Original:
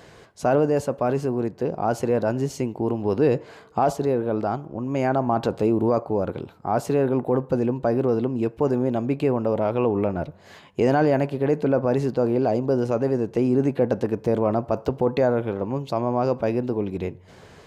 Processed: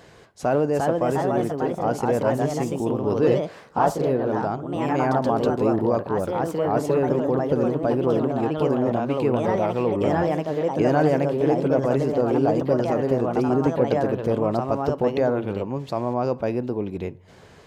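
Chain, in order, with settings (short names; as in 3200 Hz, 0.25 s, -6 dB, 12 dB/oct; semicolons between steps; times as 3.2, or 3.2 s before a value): echoes that change speed 0.4 s, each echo +2 st, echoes 2; gain -1.5 dB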